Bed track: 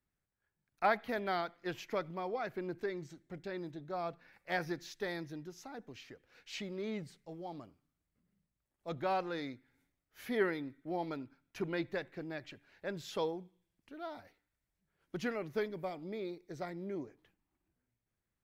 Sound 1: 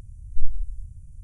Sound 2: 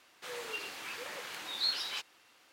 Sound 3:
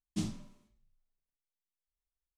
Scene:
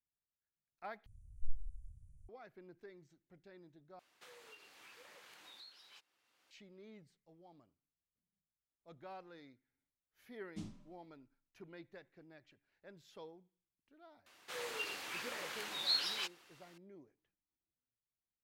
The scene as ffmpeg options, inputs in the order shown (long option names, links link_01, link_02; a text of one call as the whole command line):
ffmpeg -i bed.wav -i cue0.wav -i cue1.wav -i cue2.wav -filter_complex "[2:a]asplit=2[link_01][link_02];[0:a]volume=-17dB[link_03];[link_01]acompressor=threshold=-42dB:ratio=10:attack=5.1:release=717:knee=1:detection=rms[link_04];[3:a]highshelf=frequency=4400:gain=-7[link_05];[link_03]asplit=3[link_06][link_07][link_08];[link_06]atrim=end=1.064[link_09];[1:a]atrim=end=1.23,asetpts=PTS-STARTPTS,volume=-17dB[link_10];[link_07]atrim=start=2.286:end=3.994[link_11];[link_04]atrim=end=2.52,asetpts=PTS-STARTPTS,volume=-10.5dB[link_12];[link_08]atrim=start=6.506[link_13];[link_05]atrim=end=2.37,asetpts=PTS-STARTPTS,volume=-11.5dB,afade=type=in:duration=0.004:curve=hsin,afade=type=out:start_time=2.366:duration=0.004:curve=hsin,adelay=10400[link_14];[link_02]atrim=end=2.52,asetpts=PTS-STARTPTS,volume=-1.5dB,afade=type=in:duration=0.004:curve=hsin,afade=type=out:start_time=2.516:duration=0.004:curve=hsin,adelay=14260[link_15];[link_09][link_10]acrossfade=duration=0.004:curve1=hsin:curve2=hsin[link_16];[link_16][link_11]acrossfade=duration=0.004:curve1=hsin:curve2=hsin[link_17];[link_17][link_12]acrossfade=duration=0.004:curve1=hsin:curve2=hsin[link_18];[link_18][link_13]acrossfade=duration=0.004:curve1=hsin:curve2=hsin[link_19];[link_19][link_14][link_15]amix=inputs=3:normalize=0" out.wav